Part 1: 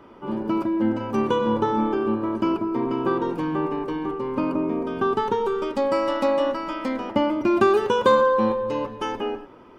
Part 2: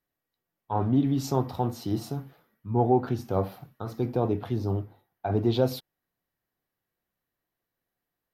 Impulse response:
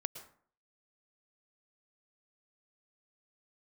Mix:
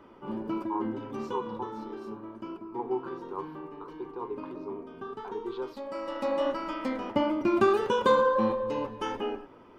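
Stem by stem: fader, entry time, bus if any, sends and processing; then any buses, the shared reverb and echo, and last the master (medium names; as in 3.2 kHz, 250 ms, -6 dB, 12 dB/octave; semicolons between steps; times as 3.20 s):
-1.0 dB, 0.00 s, no send, flange 1.5 Hz, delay 3 ms, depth 7.8 ms, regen -61%; auto duck -12 dB, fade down 1.75 s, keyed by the second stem
+1.0 dB, 0.00 s, no send, two resonant band-passes 630 Hz, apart 1.3 oct; tilt shelf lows -9.5 dB, about 750 Hz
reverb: none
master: none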